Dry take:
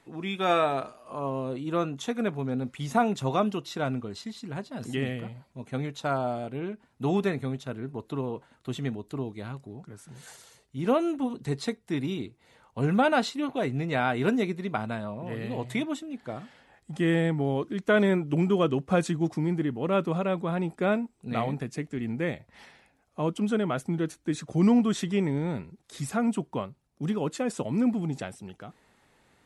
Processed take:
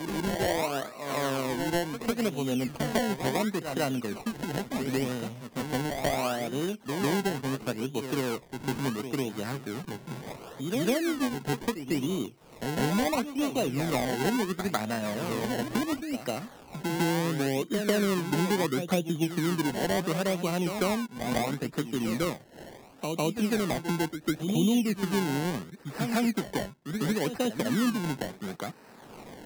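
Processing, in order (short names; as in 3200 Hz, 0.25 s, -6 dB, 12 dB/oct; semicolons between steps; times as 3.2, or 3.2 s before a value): low-pass opened by the level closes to 1400 Hz, open at -24 dBFS; HPF 160 Hz 12 dB/oct; treble ducked by the level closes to 630 Hz, closed at -21.5 dBFS; decimation with a swept rate 25×, swing 100% 0.72 Hz; wow and flutter 22 cents; reverse echo 0.151 s -10.5 dB; three-band squash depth 70%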